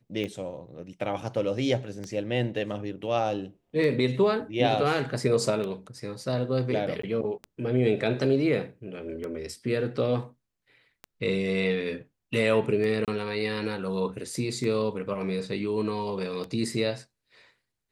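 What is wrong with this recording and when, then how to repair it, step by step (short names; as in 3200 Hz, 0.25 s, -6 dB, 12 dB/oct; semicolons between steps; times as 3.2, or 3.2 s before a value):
tick 33 1/3 rpm -22 dBFS
7.02–7.03 gap 14 ms
13.05–13.08 gap 27 ms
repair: de-click; interpolate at 7.02, 14 ms; interpolate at 13.05, 27 ms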